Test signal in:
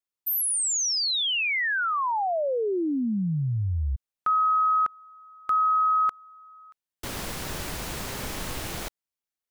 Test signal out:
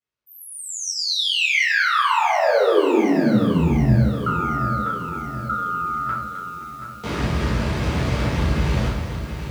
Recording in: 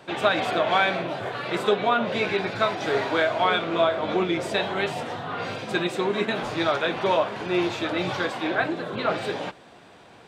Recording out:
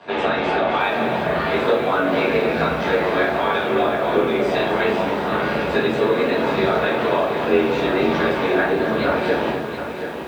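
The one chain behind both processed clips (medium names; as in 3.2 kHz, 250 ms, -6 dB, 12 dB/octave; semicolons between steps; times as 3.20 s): Bessel low-pass 3.3 kHz, order 2; bass shelf 100 Hz +10.5 dB; hum notches 50/100/150/200/250/300 Hz; compression 5:1, threshold -26 dBFS; AM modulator 91 Hz, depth 95%; frequency shift +50 Hz; thinning echo 259 ms, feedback 36%, high-pass 280 Hz, level -10.5 dB; simulated room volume 87 m³, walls mixed, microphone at 1.7 m; bit-crushed delay 727 ms, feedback 55%, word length 8-bit, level -9.5 dB; trim +5.5 dB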